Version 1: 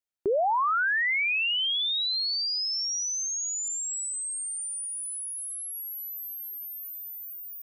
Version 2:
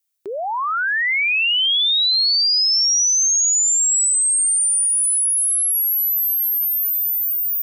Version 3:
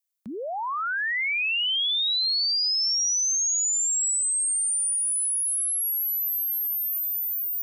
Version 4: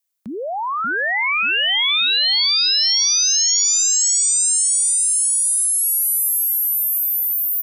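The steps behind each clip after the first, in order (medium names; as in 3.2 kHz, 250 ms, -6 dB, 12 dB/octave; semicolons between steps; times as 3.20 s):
tilt EQ +4.5 dB/octave; trim +2 dB
frequency shift -180 Hz; trim -7.5 dB
feedback delay 585 ms, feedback 45%, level -4 dB; trim +6 dB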